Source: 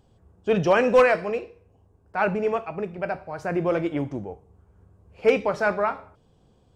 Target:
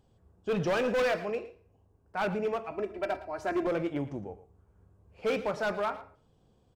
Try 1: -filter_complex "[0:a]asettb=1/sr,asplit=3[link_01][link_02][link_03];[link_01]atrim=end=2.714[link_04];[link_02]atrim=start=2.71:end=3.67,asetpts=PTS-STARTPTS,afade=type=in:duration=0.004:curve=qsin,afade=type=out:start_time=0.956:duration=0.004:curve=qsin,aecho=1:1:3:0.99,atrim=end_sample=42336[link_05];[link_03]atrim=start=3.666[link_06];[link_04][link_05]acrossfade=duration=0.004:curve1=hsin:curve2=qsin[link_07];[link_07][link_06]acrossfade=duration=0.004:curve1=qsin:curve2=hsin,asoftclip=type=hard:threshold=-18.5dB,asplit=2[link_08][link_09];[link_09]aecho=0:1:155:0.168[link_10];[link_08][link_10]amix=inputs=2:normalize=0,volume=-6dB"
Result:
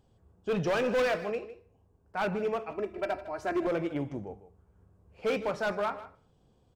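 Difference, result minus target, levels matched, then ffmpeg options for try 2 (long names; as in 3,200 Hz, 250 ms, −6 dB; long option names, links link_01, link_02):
echo 42 ms late
-filter_complex "[0:a]asettb=1/sr,asplit=3[link_01][link_02][link_03];[link_01]atrim=end=2.714[link_04];[link_02]atrim=start=2.71:end=3.67,asetpts=PTS-STARTPTS,afade=type=in:duration=0.004:curve=qsin,afade=type=out:start_time=0.956:duration=0.004:curve=qsin,aecho=1:1:3:0.99,atrim=end_sample=42336[link_05];[link_03]atrim=start=3.666[link_06];[link_04][link_05]acrossfade=duration=0.004:curve1=hsin:curve2=qsin[link_07];[link_07][link_06]acrossfade=duration=0.004:curve1=qsin:curve2=hsin,asoftclip=type=hard:threshold=-18.5dB,asplit=2[link_08][link_09];[link_09]aecho=0:1:113:0.168[link_10];[link_08][link_10]amix=inputs=2:normalize=0,volume=-6dB"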